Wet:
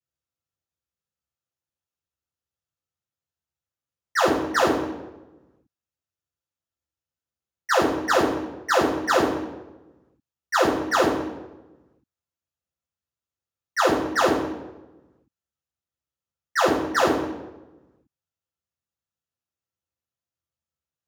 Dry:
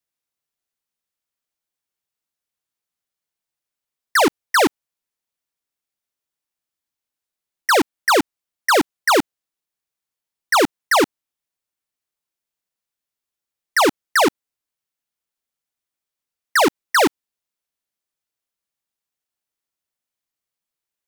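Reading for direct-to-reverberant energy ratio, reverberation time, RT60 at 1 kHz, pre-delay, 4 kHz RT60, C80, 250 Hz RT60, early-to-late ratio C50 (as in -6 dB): -9.0 dB, 1.1 s, 0.95 s, 3 ms, 0.75 s, 7.0 dB, 1.4 s, 4.5 dB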